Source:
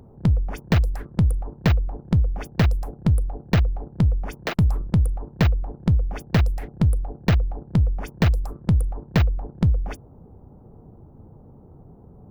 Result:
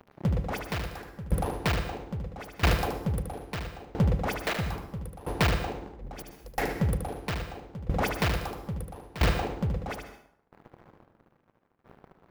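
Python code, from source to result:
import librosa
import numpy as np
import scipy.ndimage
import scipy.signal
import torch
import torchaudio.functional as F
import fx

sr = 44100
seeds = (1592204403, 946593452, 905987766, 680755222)

y = fx.highpass(x, sr, hz=420.0, slope=6)
y = fx.peak_eq(y, sr, hz=7900.0, db=-8.0, octaves=0.77)
y = fx.leveller(y, sr, passes=5)
y = fx.over_compress(y, sr, threshold_db=-24.0, ratio=-0.5, at=(5.8, 6.44), fade=0.02)
y = y + 10.0 ** (-5.0 / 20.0) * np.pad(y, (int(75 * sr / 1000.0), 0))[:len(y)]
y = fx.rev_plate(y, sr, seeds[0], rt60_s=0.67, hf_ratio=0.8, predelay_ms=110, drr_db=7.5)
y = fx.tremolo_decay(y, sr, direction='decaying', hz=0.76, depth_db=19)
y = y * 10.0 ** (-5.0 / 20.0)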